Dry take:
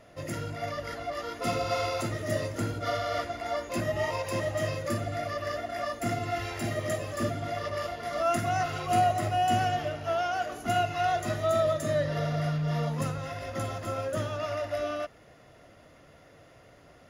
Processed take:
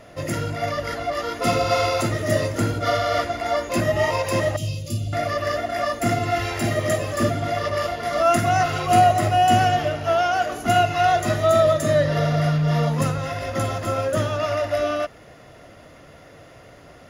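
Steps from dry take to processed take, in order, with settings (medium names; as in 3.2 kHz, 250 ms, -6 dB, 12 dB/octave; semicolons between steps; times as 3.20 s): 4.56–5.13 s: FFT filter 120 Hz 0 dB, 1.8 kHz -29 dB, 2.8 kHz -3 dB; trim +9 dB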